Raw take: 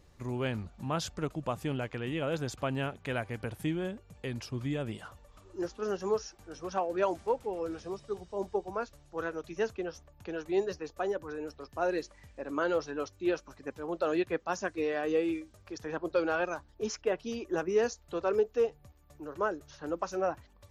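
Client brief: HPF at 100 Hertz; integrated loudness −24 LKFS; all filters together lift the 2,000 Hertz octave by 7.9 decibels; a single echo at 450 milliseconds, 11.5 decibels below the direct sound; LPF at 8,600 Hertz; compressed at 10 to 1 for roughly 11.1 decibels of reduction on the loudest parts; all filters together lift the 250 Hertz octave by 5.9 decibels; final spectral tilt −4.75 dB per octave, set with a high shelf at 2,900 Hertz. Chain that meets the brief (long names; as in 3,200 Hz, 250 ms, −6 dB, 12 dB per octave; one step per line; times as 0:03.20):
high-pass filter 100 Hz
low-pass filter 8,600 Hz
parametric band 250 Hz +8.5 dB
parametric band 2,000 Hz +8 dB
high-shelf EQ 2,900 Hz +8 dB
downward compressor 10 to 1, threshold −31 dBFS
single-tap delay 450 ms −11.5 dB
level +13 dB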